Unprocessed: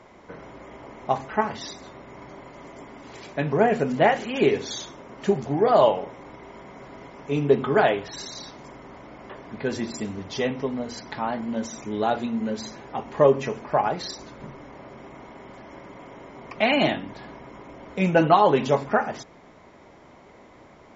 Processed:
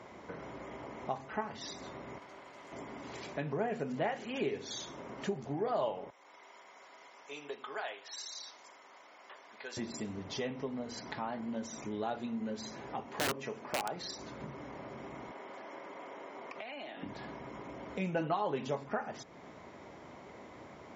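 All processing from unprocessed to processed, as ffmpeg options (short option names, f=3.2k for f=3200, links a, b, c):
-filter_complex "[0:a]asettb=1/sr,asplit=3[a][b][c];[a]atrim=end=2.184[d];[b]atrim=start=2.18:end=2.72,asetpts=PTS-STARTPTS,afade=t=in:d=0.004:c=qsin,afade=t=out:st=0.536:d=0.004:c=qsin,highpass=f=630:p=1,aeval=exprs='(tanh(141*val(0)+0.75)-tanh(0.75))/141':c=same[e];[c]atrim=start=2.716[f];[d][e]acrossfade=d=0.004:c1=hsin:c2=qsin[g];[g][f]acrossfade=d=0.004:c1=qsin:c2=hsin,asettb=1/sr,asplit=3[h][i][j];[h]atrim=end=6.104[k];[i]atrim=start=6.1:end=9.77,asetpts=PTS-STARTPTS,afade=t=in:d=0.004:c=qsin,afade=t=out:st=3.666:d=0.004:c=qsin,highpass=1.1k,equalizer=f=1.7k:w=0.49:g=-6.5[l];[j]atrim=start=9.766[m];[k][l]acrossfade=d=0.004:c1=hsin:c2=qsin[n];[n][m]acrossfade=d=0.004:c1=qsin:c2=hsin,asettb=1/sr,asplit=3[o][p][q];[o]atrim=end=13.064[r];[p]atrim=start=13.06:end=13.96,asetpts=PTS-STARTPTS,afade=t=in:d=0.004:c=qsin,afade=t=out:st=0.896:d=0.004:c=qsin,highpass=f=190:p=1,aeval=exprs='(mod(4.22*val(0)+1,2)-1)/4.22':c=same[s];[q]atrim=start=13.956[t];[r][s]acrossfade=d=0.004:c1=hsin:c2=qsin[u];[u][t]acrossfade=d=0.004:c1=qsin:c2=hsin,asettb=1/sr,asplit=3[v][w][x];[v]atrim=end=15.314[y];[w]atrim=start=15.31:end=17.03,asetpts=PTS-STARTPTS,afade=t=in:d=0.004:c=qsin,afade=t=out:st=1.716:d=0.004:c=qsin,highpass=380,highshelf=f=4.9k:g=-5,acompressor=threshold=-37dB:ratio=10:attack=3.2:release=140:knee=1:detection=peak[z];[x]atrim=start=17.026[aa];[y][z]acrossfade=d=0.004:c1=hsin:c2=qsin[ab];[ab][aa]acrossfade=d=0.004:c1=qsin:c2=hsin,highpass=65,acompressor=threshold=-42dB:ratio=2,volume=-1dB"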